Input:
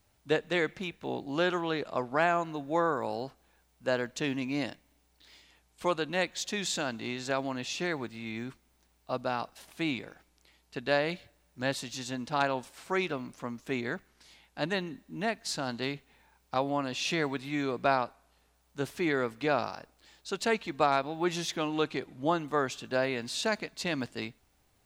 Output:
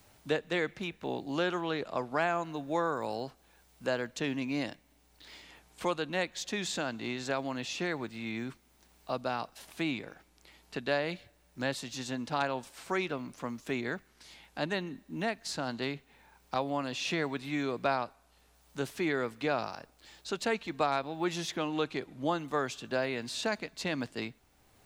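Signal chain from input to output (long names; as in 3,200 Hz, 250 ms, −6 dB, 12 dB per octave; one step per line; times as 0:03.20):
multiband upward and downward compressor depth 40%
level −2 dB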